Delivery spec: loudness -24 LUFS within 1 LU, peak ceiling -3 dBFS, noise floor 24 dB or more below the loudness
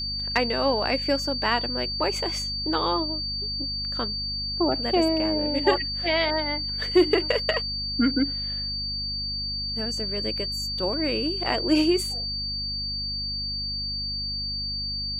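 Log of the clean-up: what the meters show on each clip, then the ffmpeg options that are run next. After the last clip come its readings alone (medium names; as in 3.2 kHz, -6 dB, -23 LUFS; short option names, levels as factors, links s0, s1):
hum 50 Hz; highest harmonic 250 Hz; hum level -35 dBFS; steady tone 4.6 kHz; tone level -28 dBFS; loudness -25.0 LUFS; peak level -7.0 dBFS; loudness target -24.0 LUFS
-> -af "bandreject=f=50:t=h:w=4,bandreject=f=100:t=h:w=4,bandreject=f=150:t=h:w=4,bandreject=f=200:t=h:w=4,bandreject=f=250:t=h:w=4"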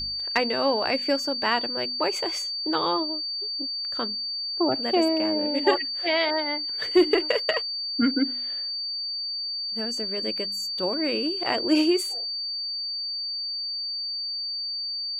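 hum not found; steady tone 4.6 kHz; tone level -28 dBFS
-> -af "bandreject=f=4600:w=30"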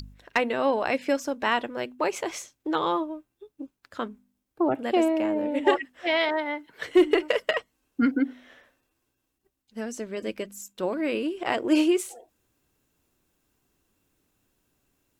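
steady tone not found; loudness -26.5 LUFS; peak level -8.0 dBFS; loudness target -24.0 LUFS
-> -af "volume=1.33"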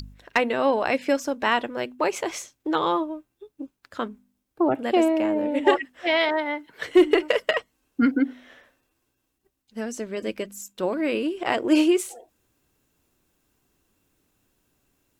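loudness -24.0 LUFS; peak level -5.5 dBFS; noise floor -76 dBFS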